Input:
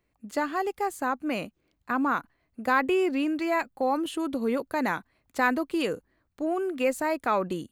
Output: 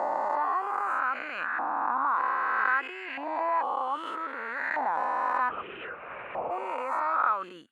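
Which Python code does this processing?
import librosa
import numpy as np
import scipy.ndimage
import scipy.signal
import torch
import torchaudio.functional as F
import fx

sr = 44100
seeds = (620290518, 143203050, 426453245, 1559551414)

p1 = fx.spec_swells(x, sr, rise_s=2.23)
p2 = fx.over_compress(p1, sr, threshold_db=-31.0, ratio=-1.0)
p3 = p1 + (p2 * librosa.db_to_amplitude(1.5))
p4 = fx.lpc_vocoder(p3, sr, seeds[0], excitation='whisper', order=10, at=(5.49, 6.51))
p5 = fx.filter_lfo_bandpass(p4, sr, shape='saw_up', hz=0.63, low_hz=780.0, high_hz=1800.0, q=3.8)
y = p5 * librosa.db_to_amplitude(-1.0)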